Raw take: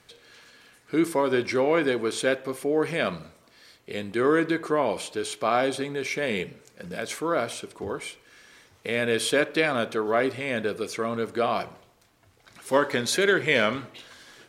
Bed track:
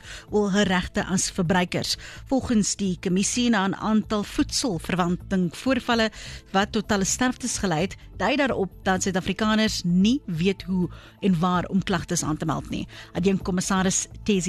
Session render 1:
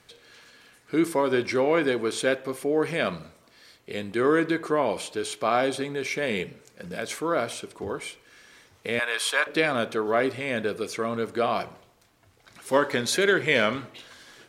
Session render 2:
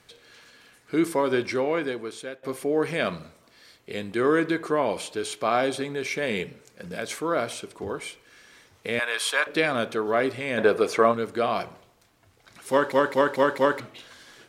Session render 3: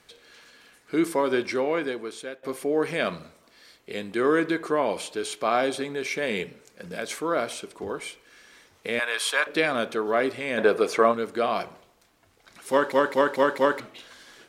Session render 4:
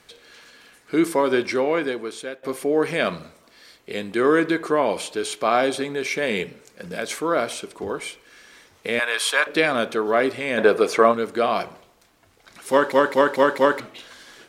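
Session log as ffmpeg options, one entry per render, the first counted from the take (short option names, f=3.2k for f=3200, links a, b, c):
-filter_complex "[0:a]asettb=1/sr,asplit=3[a][b][c];[a]atrim=end=8.994[d];[b]atrim=start=8.99:end=9.47,asetpts=PTS-STARTPTS,afade=t=in:d=0.004:c=qsin,afade=t=out:st=0.476:d=0.004:c=qsin,highpass=f=1k:t=q:w=2.3[e];[c]atrim=start=9.466[f];[d][e]acrossfade=d=0.004:c1=hsin:c2=qsin[g];[g][f]acrossfade=d=0.004:c1=qsin:c2=hsin"
-filter_complex "[0:a]asplit=3[a][b][c];[a]afade=t=out:st=10.57:d=0.02[d];[b]equalizer=f=810:t=o:w=2.7:g=12.5,afade=t=in:st=10.57:d=0.02,afade=t=out:st=11.11:d=0.02[e];[c]afade=t=in:st=11.11:d=0.02[f];[d][e][f]amix=inputs=3:normalize=0,asplit=7[g][h][i][j][k][l][m];[g]atrim=end=2.43,asetpts=PTS-STARTPTS,afade=t=out:st=1.33:d=1.1:silence=0.11885[n];[h]atrim=start=2.43:end=12.922,asetpts=PTS-STARTPTS,afade=t=in:d=0.004:c=hsin:silence=0.11885[o];[i]atrim=start=12.698:end=12.922[p];[j]atrim=start=12.698:end=12.922[q];[k]atrim=start=12.698:end=12.922[r];[l]atrim=start=12.698:end=12.922[s];[m]atrim=start=13.798[t];[n][o]concat=n=2:v=0:a=1[u];[u][p]acrossfade=d=0.004:c1=hsin:c2=hsin[v];[v][q]acrossfade=d=0.004:c1=hsin:c2=hsin[w];[w][r]acrossfade=d=0.004:c1=hsin:c2=hsin[x];[x][s]acrossfade=d=0.004:c1=hsin:c2=hsin[y];[y][t]acrossfade=d=0.004:c1=hsin:c2=hsin"
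-af "equalizer=f=110:t=o:w=0.82:g=-8"
-af "volume=4dB"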